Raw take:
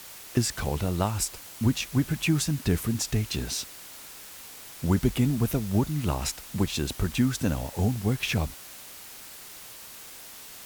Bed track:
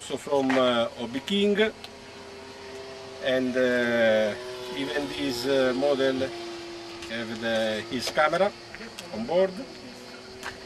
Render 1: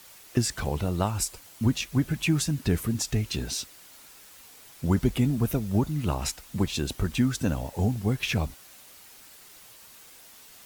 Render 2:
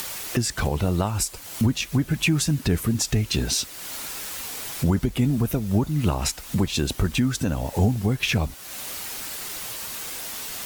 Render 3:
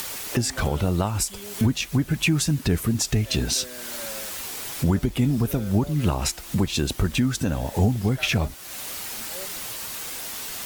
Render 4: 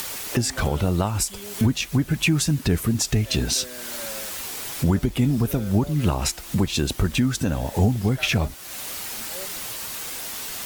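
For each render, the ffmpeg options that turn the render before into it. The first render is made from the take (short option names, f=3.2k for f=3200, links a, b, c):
-af "afftdn=nr=7:nf=-45"
-filter_complex "[0:a]asplit=2[a][b];[b]acompressor=mode=upward:threshold=-25dB:ratio=2.5,volume=3dB[c];[a][c]amix=inputs=2:normalize=0,alimiter=limit=-12dB:level=0:latency=1:release=322"
-filter_complex "[1:a]volume=-18.5dB[a];[0:a][a]amix=inputs=2:normalize=0"
-af "volume=1dB"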